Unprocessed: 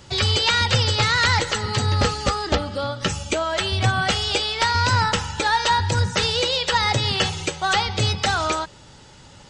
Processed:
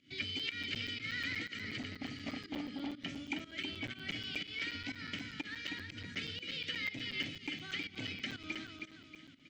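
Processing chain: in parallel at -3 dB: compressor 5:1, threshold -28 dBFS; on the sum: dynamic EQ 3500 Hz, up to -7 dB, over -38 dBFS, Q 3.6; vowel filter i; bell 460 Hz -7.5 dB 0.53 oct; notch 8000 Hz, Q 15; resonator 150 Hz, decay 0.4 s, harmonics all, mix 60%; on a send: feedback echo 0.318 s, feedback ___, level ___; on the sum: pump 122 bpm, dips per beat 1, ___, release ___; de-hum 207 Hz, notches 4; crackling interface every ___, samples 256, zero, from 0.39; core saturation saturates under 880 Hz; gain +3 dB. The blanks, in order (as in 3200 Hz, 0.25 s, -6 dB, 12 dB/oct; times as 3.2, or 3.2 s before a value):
38%, -5.5 dB, -16 dB, 0.179 s, 0.12 s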